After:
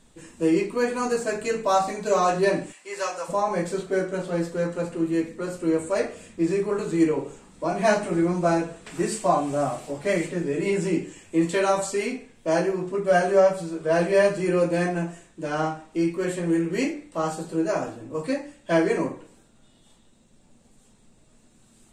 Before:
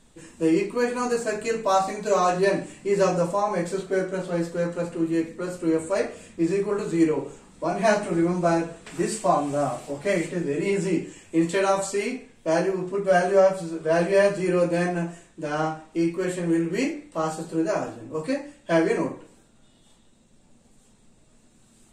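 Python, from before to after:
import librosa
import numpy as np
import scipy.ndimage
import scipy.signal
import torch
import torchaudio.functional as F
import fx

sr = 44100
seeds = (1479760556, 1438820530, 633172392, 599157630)

y = fx.highpass(x, sr, hz=900.0, slope=12, at=(2.71, 3.28), fade=0.02)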